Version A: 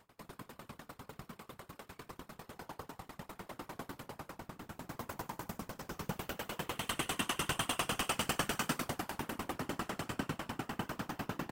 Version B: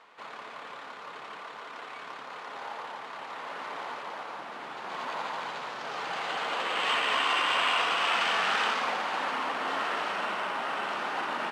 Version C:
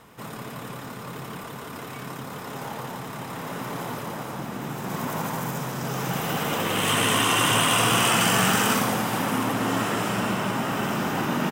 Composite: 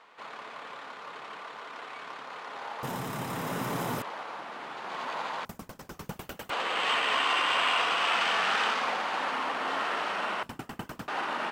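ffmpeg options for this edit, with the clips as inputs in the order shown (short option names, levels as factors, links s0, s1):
-filter_complex "[0:a]asplit=2[s0][s1];[1:a]asplit=4[s2][s3][s4][s5];[s2]atrim=end=2.832[s6];[2:a]atrim=start=2.828:end=4.022[s7];[s3]atrim=start=4.018:end=5.452[s8];[s0]atrim=start=5.448:end=6.502[s9];[s4]atrim=start=6.498:end=10.432[s10];[s1]atrim=start=10.428:end=11.082[s11];[s5]atrim=start=11.078[s12];[s6][s7]acrossfade=d=0.004:c1=hsin:c2=hsin[s13];[s13][s8]acrossfade=d=0.004:c1=hsin:c2=hsin[s14];[s14][s9]acrossfade=d=0.004:c1=hsin:c2=hsin[s15];[s15][s10]acrossfade=d=0.004:c1=hsin:c2=hsin[s16];[s16][s11]acrossfade=d=0.004:c1=hsin:c2=hsin[s17];[s17][s12]acrossfade=d=0.004:c1=hsin:c2=hsin"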